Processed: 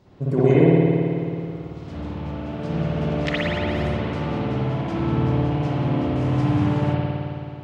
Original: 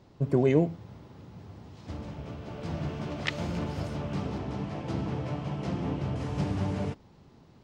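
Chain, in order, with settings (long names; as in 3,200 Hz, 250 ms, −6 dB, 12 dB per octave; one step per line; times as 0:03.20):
spring reverb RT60 2.6 s, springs 54 ms, chirp 35 ms, DRR −9 dB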